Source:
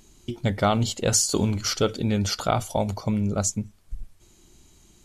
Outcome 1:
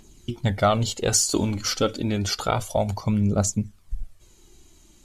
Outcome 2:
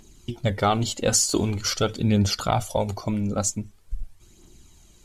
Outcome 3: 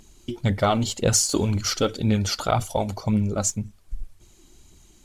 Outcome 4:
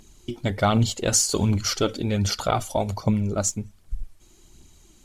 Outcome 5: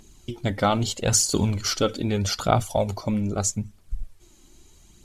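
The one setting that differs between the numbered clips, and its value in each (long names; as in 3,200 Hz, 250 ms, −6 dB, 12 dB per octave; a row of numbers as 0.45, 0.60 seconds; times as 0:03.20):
phase shifter, speed: 0.29, 0.45, 1.9, 1.3, 0.79 Hertz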